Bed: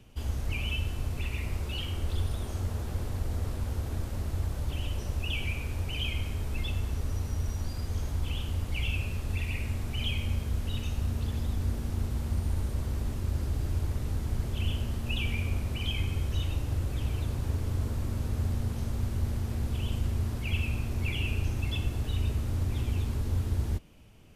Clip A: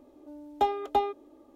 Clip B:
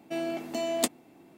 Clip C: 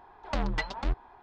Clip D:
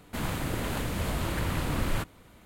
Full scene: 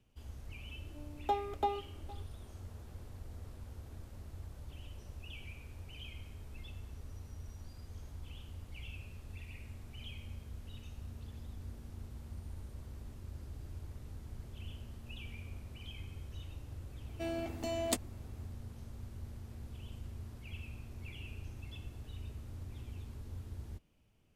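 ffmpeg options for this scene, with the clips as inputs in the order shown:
ffmpeg -i bed.wav -i cue0.wav -i cue1.wav -filter_complex "[0:a]volume=-16dB[link_01];[1:a]aecho=1:1:463:0.0944,atrim=end=1.55,asetpts=PTS-STARTPTS,volume=-7.5dB,afade=type=in:duration=0.004:curve=hsin,afade=type=out:start_time=1.546:duration=0.004:curve=hsin,adelay=680[link_02];[2:a]atrim=end=1.37,asetpts=PTS-STARTPTS,volume=-6.5dB,afade=type=in:duration=0.004:curve=hsin,afade=type=out:start_time=1.366:duration=0.004:curve=hsin,adelay=17090[link_03];[link_01][link_02][link_03]amix=inputs=3:normalize=0" out.wav

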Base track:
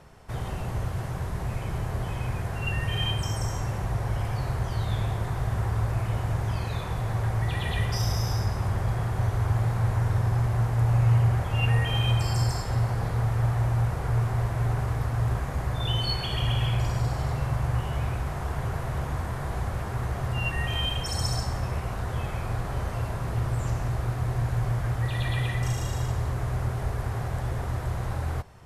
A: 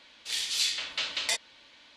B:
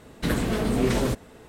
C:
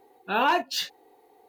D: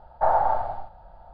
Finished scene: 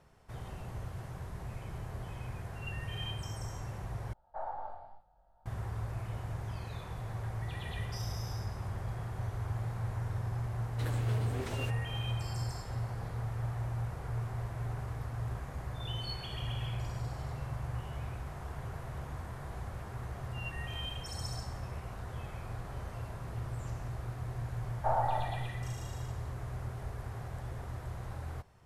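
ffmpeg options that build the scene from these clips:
ffmpeg -i bed.wav -i cue0.wav -i cue1.wav -i cue2.wav -i cue3.wav -filter_complex "[4:a]asplit=2[link_01][link_02];[0:a]volume=-11.5dB[link_03];[link_01]flanger=delay=19.5:depth=3.2:speed=2.3[link_04];[2:a]highpass=330[link_05];[link_03]asplit=2[link_06][link_07];[link_06]atrim=end=4.134[link_08];[link_04]atrim=end=1.33,asetpts=PTS-STARTPTS,volume=-16.5dB[link_09];[link_07]atrim=start=5.456[link_10];[link_05]atrim=end=1.48,asetpts=PTS-STARTPTS,volume=-14.5dB,afade=type=in:duration=0.004:curve=hsin,afade=type=out:start_time=1.476:duration=0.004:curve=hsin,adelay=10560[link_11];[link_02]atrim=end=1.33,asetpts=PTS-STARTPTS,volume=-10dB,afade=type=in:duration=0.004:curve=hsin,afade=type=out:start_time=1.326:duration=0.004:curve=hsin,adelay=24630[link_12];[link_08][link_09]acrossfade=duration=0.004:curve1=hsin:curve2=hsin[link_13];[link_13][link_10]acrossfade=duration=0.004:curve1=hsin:curve2=hsin[link_14];[link_14][link_11][link_12]amix=inputs=3:normalize=0" out.wav

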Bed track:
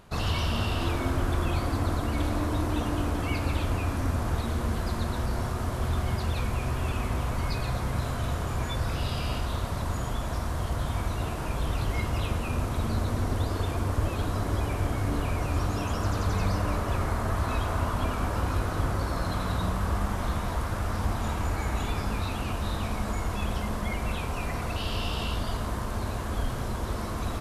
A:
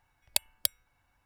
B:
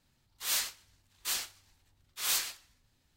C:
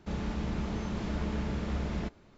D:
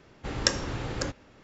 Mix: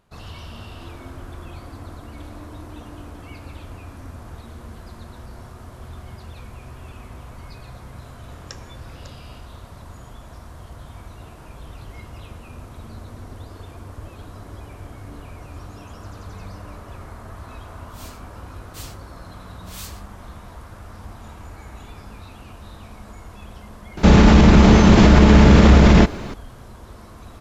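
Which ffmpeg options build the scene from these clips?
ffmpeg -i bed.wav -i cue0.wav -i cue1.wav -i cue2.wav -i cue3.wav -filter_complex "[0:a]volume=-10dB[link_01];[2:a]dynaudnorm=framelen=140:gausssize=11:maxgain=11.5dB[link_02];[3:a]alimiter=level_in=28.5dB:limit=-1dB:release=50:level=0:latency=1[link_03];[4:a]atrim=end=1.43,asetpts=PTS-STARTPTS,volume=-15dB,afade=type=in:duration=0.004:curve=hsin,afade=type=out:start_time=1.426:duration=0.004:curve=hsin,adelay=8040[link_04];[link_02]atrim=end=3.16,asetpts=PTS-STARTPTS,volume=-18dB,afade=type=in:duration=0.004:curve=hsin,afade=type=out:start_time=3.156:duration=0.004:curve=hsin,adelay=17490[link_05];[link_03]atrim=end=2.37,asetpts=PTS-STARTPTS,volume=-1dB,afade=type=in:duration=0.004:curve=hsin,afade=type=out:start_time=2.366:duration=0.004:curve=hsin,adelay=23970[link_06];[link_01][link_04][link_05][link_06]amix=inputs=4:normalize=0" out.wav

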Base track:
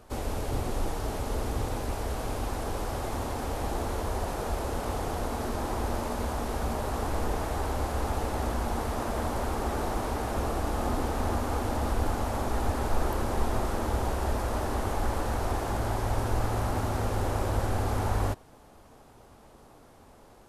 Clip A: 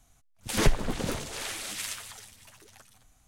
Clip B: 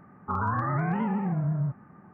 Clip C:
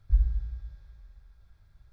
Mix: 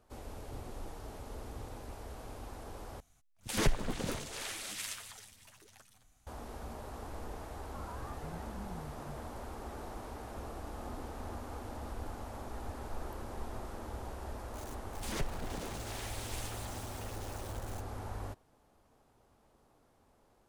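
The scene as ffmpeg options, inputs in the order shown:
ffmpeg -i bed.wav -i cue0.wav -i cue1.wav -filter_complex "[1:a]asplit=2[link_01][link_02];[0:a]volume=-14dB[link_03];[link_01]acontrast=86[link_04];[2:a]asplit=2[link_05][link_06];[link_06]adelay=2.5,afreqshift=-2.4[link_07];[link_05][link_07]amix=inputs=2:normalize=1[link_08];[link_02]aeval=exprs='val(0)+0.5*0.0316*sgn(val(0))':channel_layout=same[link_09];[link_03]asplit=2[link_10][link_11];[link_10]atrim=end=3.004[link_12];[link_04]atrim=end=3.27,asetpts=PTS-STARTPTS,volume=-12.5dB[link_13];[link_11]atrim=start=6.266[link_14];[link_08]atrim=end=2.13,asetpts=PTS-STARTPTS,volume=-18dB,afade=type=in:duration=0.004:curve=hsin,afade=type=out:start_time=2.126:duration=0.004:curve=hsin,adelay=7450[link_15];[link_09]atrim=end=3.27,asetpts=PTS-STARTPTS,volume=-15dB,afade=type=in:duration=0.004:curve=hsin,afade=type=out:start_time=3.266:duration=0.004:curve=hsin,adelay=14540[link_16];[link_12][link_13]acrossfade=duration=0.004:curve1=hsin:curve2=hsin[link_17];[link_17][link_14]acrossfade=duration=0.004:curve1=hsin:curve2=hsin[link_18];[link_18][link_15][link_16]amix=inputs=3:normalize=0" out.wav

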